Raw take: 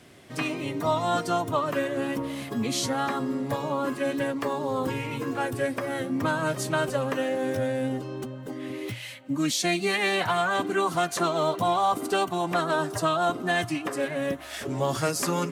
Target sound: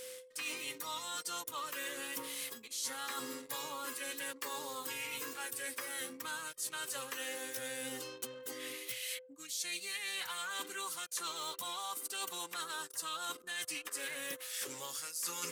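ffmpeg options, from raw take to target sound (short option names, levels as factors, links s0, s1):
-af "aderivative,aeval=exprs='val(0)+0.00158*sin(2*PI*510*n/s)':c=same,equalizer=f=660:t=o:w=0.32:g=-13.5,areverse,acompressor=threshold=0.00316:ratio=8,areverse,anlmdn=0.0000158,volume=3.98"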